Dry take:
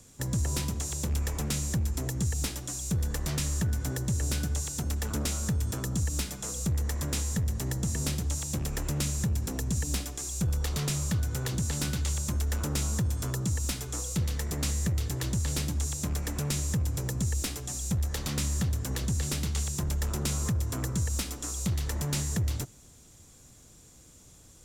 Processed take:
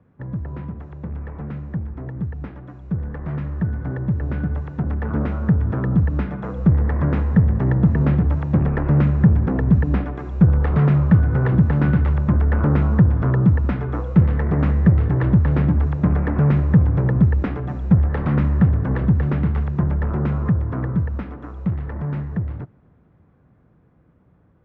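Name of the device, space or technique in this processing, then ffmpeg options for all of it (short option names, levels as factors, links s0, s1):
action camera in a waterproof case: -af "highpass=60,lowpass=f=1700:w=0.5412,lowpass=f=1700:w=1.3066,equalizer=f=170:w=2.5:g=5.5,dynaudnorm=f=490:g=21:m=5.96" -ar 32000 -c:a aac -b:a 96k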